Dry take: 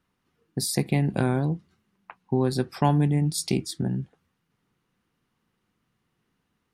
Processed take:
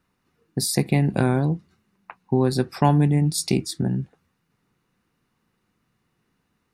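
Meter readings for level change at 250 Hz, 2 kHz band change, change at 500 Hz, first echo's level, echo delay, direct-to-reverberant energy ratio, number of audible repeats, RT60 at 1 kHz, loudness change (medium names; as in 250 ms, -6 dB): +3.5 dB, +3.5 dB, +3.5 dB, no echo, no echo, no reverb, no echo, no reverb, +3.5 dB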